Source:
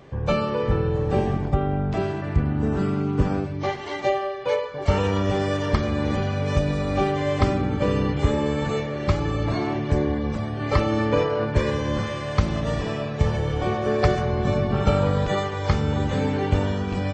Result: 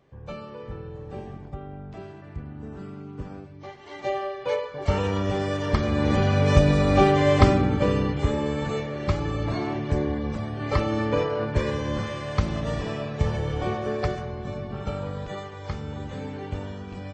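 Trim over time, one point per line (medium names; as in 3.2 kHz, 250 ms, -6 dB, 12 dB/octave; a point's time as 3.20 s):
3.75 s -15 dB
4.19 s -3 dB
5.58 s -3 dB
6.36 s +4.5 dB
7.37 s +4.5 dB
8.19 s -3 dB
13.69 s -3 dB
14.42 s -11 dB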